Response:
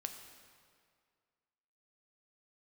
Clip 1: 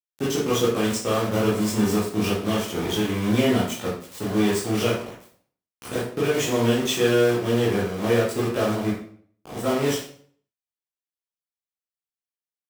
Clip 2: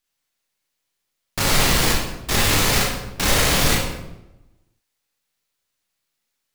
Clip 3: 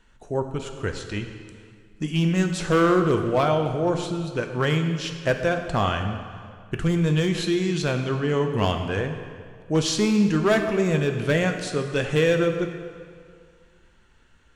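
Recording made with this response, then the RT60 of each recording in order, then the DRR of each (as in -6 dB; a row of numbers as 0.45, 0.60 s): 3; 0.55, 0.95, 2.1 s; -8.0, -2.5, 5.0 dB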